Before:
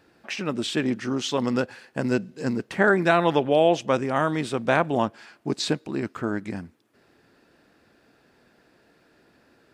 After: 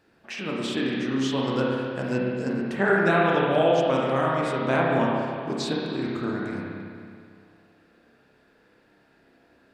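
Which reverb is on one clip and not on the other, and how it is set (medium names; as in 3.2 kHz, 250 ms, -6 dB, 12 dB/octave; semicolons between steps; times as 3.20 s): spring tank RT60 2.2 s, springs 30/56 ms, chirp 20 ms, DRR -4 dB; trim -5.5 dB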